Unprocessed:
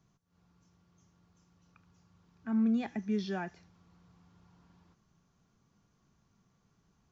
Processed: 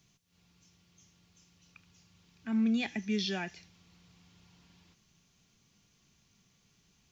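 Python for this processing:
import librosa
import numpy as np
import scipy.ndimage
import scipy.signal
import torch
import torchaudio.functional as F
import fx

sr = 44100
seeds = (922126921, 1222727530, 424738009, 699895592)

y = fx.high_shelf_res(x, sr, hz=1800.0, db=10.5, q=1.5)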